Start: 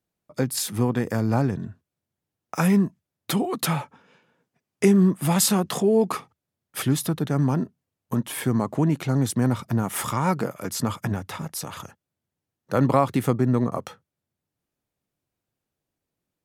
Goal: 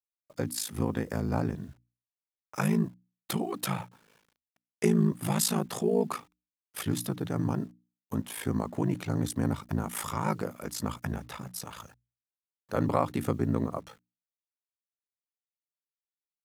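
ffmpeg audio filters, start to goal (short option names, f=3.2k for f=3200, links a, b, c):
-af "aeval=exprs='val(0)*sin(2*PI*27*n/s)':c=same,acrusher=bits=9:mix=0:aa=0.000001,bandreject=f=60:t=h:w=6,bandreject=f=120:t=h:w=6,bandreject=f=180:t=h:w=6,bandreject=f=240:t=h:w=6,bandreject=f=300:t=h:w=6,volume=-4dB"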